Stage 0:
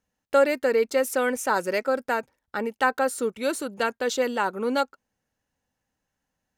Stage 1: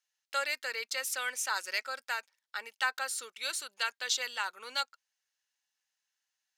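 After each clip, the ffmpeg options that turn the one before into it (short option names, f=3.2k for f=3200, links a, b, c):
-af "highpass=1.4k,equalizer=f=4.5k:t=o:w=1.8:g=9,volume=-5.5dB"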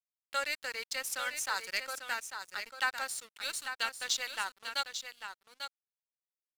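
-af "aeval=exprs='sgn(val(0))*max(abs(val(0))-0.00562,0)':c=same,aecho=1:1:845:0.398"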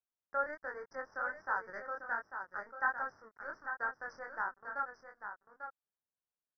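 -af "flanger=delay=19.5:depth=5.6:speed=1.3,aresample=11025,aresample=44100,asuperstop=centerf=3300:order=12:qfactor=0.73,volume=4dB"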